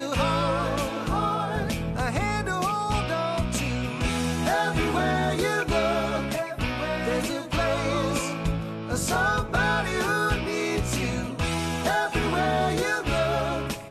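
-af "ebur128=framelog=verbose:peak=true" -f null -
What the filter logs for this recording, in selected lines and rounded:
Integrated loudness:
  I:         -25.9 LUFS
  Threshold: -35.9 LUFS
Loudness range:
  LRA:         1.5 LU
  Threshold: -45.9 LUFS
  LRA low:   -26.8 LUFS
  LRA high:  -25.4 LUFS
True peak:
  Peak:      -13.4 dBFS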